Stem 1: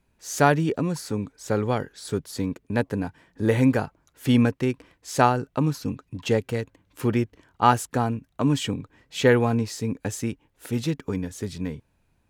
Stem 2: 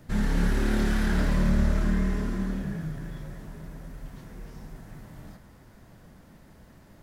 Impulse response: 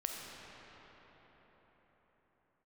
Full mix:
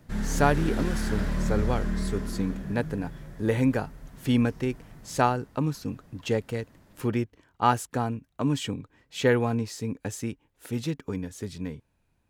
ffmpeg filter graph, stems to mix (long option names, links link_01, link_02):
-filter_complex "[0:a]volume=-4dB[link_01];[1:a]volume=-4dB[link_02];[link_01][link_02]amix=inputs=2:normalize=0"